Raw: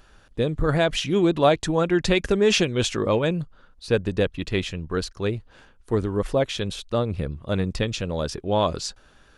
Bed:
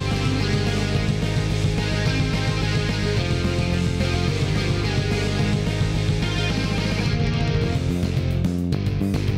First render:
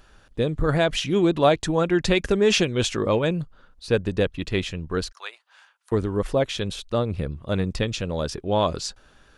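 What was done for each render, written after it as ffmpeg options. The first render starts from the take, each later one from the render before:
-filter_complex "[0:a]asettb=1/sr,asplit=3[a][b][c];[a]atrim=end=5.124[d];[b]atrim=start=5.12:end=5.92,asetpts=PTS-STARTPTS,afade=t=in:d=0.004:c=qsin,afade=t=out:st=0.796:d=0.004:c=qsin,highpass=f=860:w=0.5412,highpass=f=860:w=1.3066[e];[c]atrim=start=5.916[f];[d][e]acrossfade=d=0.004:c1=hsin:c2=qsin[g];[g][f]acrossfade=d=0.004:c1=qsin:c2=hsin"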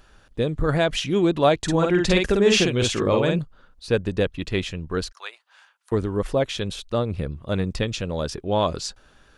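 -filter_complex "[0:a]asettb=1/sr,asplit=3[a][b][c];[a]atrim=end=1.634[d];[b]atrim=start=1.63:end=3.39,asetpts=PTS-STARTPTS,afade=t=in:d=0.004:c=qsin,afade=t=out:st=1.756:d=0.004:c=qsin,asplit=2[e][f];[f]adelay=50,volume=-3dB[g];[e][g]amix=inputs=2:normalize=0,atrim=end_sample=77616[h];[c]atrim=start=3.386[i];[d][h]acrossfade=d=0.004:c1=hsin:c2=qsin[j];[j][i]acrossfade=d=0.004:c1=qsin:c2=hsin"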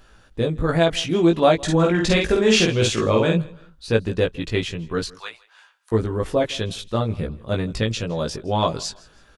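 -filter_complex "[0:a]asplit=2[a][b];[b]adelay=18,volume=-3dB[c];[a][c]amix=inputs=2:normalize=0,aecho=1:1:162|324:0.0708|0.0241"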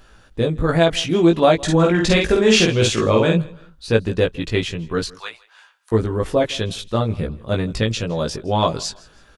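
-af "volume=2.5dB,alimiter=limit=-3dB:level=0:latency=1"

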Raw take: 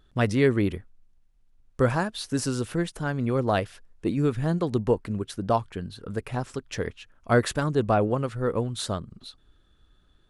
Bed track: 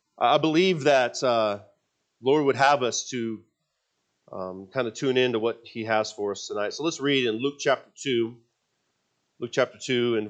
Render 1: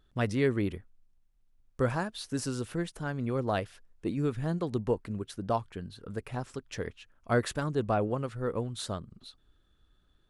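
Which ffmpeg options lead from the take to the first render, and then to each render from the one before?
-af "volume=-6dB"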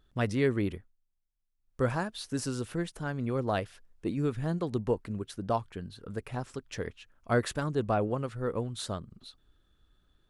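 -filter_complex "[0:a]asplit=3[a][b][c];[a]atrim=end=0.96,asetpts=PTS-STARTPTS,afade=t=out:st=0.73:d=0.23:silence=0.177828[d];[b]atrim=start=0.96:end=1.61,asetpts=PTS-STARTPTS,volume=-15dB[e];[c]atrim=start=1.61,asetpts=PTS-STARTPTS,afade=t=in:d=0.23:silence=0.177828[f];[d][e][f]concat=n=3:v=0:a=1"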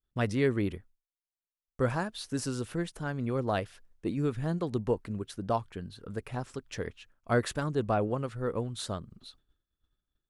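-af "agate=range=-33dB:threshold=-54dB:ratio=3:detection=peak"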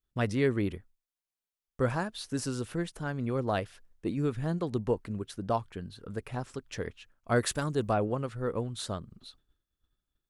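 -filter_complex "[0:a]asettb=1/sr,asplit=3[a][b][c];[a]atrim=end=7.364[d];[b]atrim=start=7.36:end=7.93,asetpts=PTS-STARTPTS,afade=t=in:d=0.004:c=qsin,afade=t=out:st=0.566:d=0.004:c=qsin,highshelf=f=5.1k:g=10[e];[c]atrim=start=7.926[f];[d][e]acrossfade=d=0.004:c1=hsin:c2=qsin[g];[g][f]acrossfade=d=0.004:c1=qsin:c2=hsin"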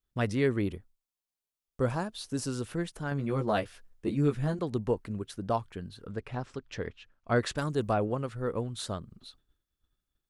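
-filter_complex "[0:a]asettb=1/sr,asplit=3[a][b][c];[a]atrim=end=0.644[d];[b]atrim=start=0.64:end=2.49,asetpts=PTS-STARTPTS,afade=t=in:d=0.004:c=qsin,afade=t=out:st=1.846:d=0.004:c=qsin,equalizer=f=1.8k:w=1.5:g=-5[e];[c]atrim=start=2.486[f];[d][e]acrossfade=d=0.004:c1=hsin:c2=qsin[g];[g][f]acrossfade=d=0.004:c1=qsin:c2=hsin,asettb=1/sr,asplit=3[h][i][j];[h]atrim=end=3.104[k];[i]atrim=start=3.1:end=4.59,asetpts=PTS-STARTPTS,afade=t=in:d=0.004:c=qsin,afade=t=out:st=1.486:d=0.004:c=qsin,asplit=2[l][m];[m]adelay=14,volume=-3.5dB[n];[l][n]amix=inputs=2:normalize=0,atrim=end_sample=65709[o];[j]atrim=start=4.586[p];[k][o]acrossfade=d=0.004:c1=hsin:c2=qsin[q];[q][p]acrossfade=d=0.004:c1=qsin:c2=hsin,asettb=1/sr,asplit=3[r][s][t];[r]atrim=end=6.104[u];[s]atrim=start=6.1:end=7.58,asetpts=PTS-STARTPTS,afade=t=in:d=0.004:c=qsin,afade=t=out:st=1.476:d=0.004:c=qsin,lowpass=5.2k[v];[t]atrim=start=7.576[w];[u][v]acrossfade=d=0.004:c1=hsin:c2=qsin[x];[x][w]acrossfade=d=0.004:c1=qsin:c2=hsin"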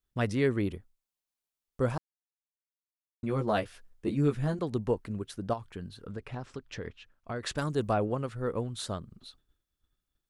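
-filter_complex "[0:a]asettb=1/sr,asplit=3[a][b][c];[a]atrim=end=5.534[d];[b]atrim=start=5.53:end=7.47,asetpts=PTS-STARTPTS,afade=t=in:d=0.004:c=qsin,afade=t=out:st=1.936:d=0.004:c=qsin,acompressor=threshold=-32dB:ratio=6:attack=3.2:release=140:knee=1:detection=peak[e];[c]atrim=start=7.466[f];[d][e]acrossfade=d=0.004:c1=hsin:c2=qsin[g];[g][f]acrossfade=d=0.004:c1=qsin:c2=hsin,asplit=3[h][i][j];[h]atrim=end=1.98,asetpts=PTS-STARTPTS,afade=t=out:st=1.976:d=0.004:c=hsin[k];[i]atrim=start=1.98:end=3.23,asetpts=PTS-STARTPTS,volume=0[l];[j]atrim=start=3.23,asetpts=PTS-STARTPTS,afade=t=in:d=0.004:c=hsin[m];[k][l][m]concat=n=3:v=0:a=1"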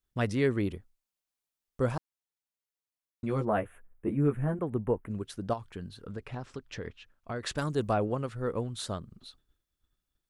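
-filter_complex "[0:a]asplit=3[a][b][c];[a]afade=t=out:st=3.44:d=0.02[d];[b]asuperstop=centerf=4900:order=4:qfactor=0.59,afade=t=in:st=3.44:d=0.02,afade=t=out:st=5.08:d=0.02[e];[c]afade=t=in:st=5.08:d=0.02[f];[d][e][f]amix=inputs=3:normalize=0"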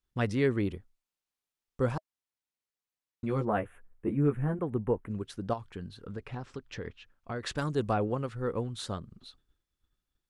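-af "highshelf=f=9.5k:g=-9,bandreject=f=630:w=12"

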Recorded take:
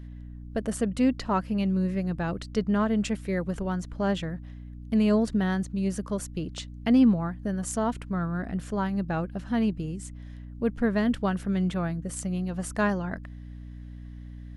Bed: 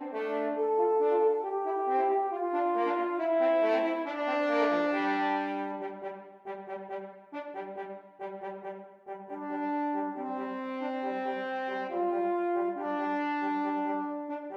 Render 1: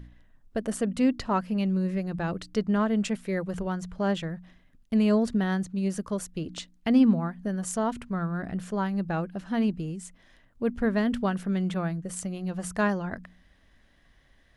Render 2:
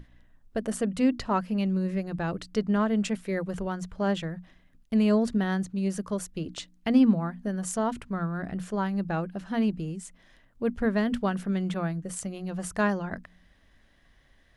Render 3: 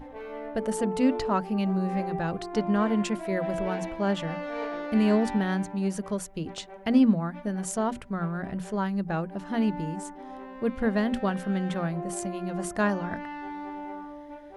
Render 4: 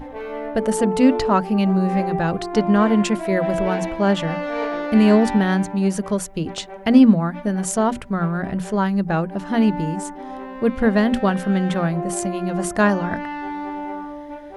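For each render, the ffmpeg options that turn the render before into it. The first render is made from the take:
-af "bandreject=f=60:t=h:w=4,bandreject=f=120:t=h:w=4,bandreject=f=180:t=h:w=4,bandreject=f=240:t=h:w=4,bandreject=f=300:t=h:w=4"
-af "bandreject=f=60:t=h:w=6,bandreject=f=120:t=h:w=6,bandreject=f=180:t=h:w=6,bandreject=f=240:t=h:w=6,bandreject=f=300:t=h:w=6"
-filter_complex "[1:a]volume=-6.5dB[a];[0:a][a]amix=inputs=2:normalize=0"
-af "volume=8.5dB"

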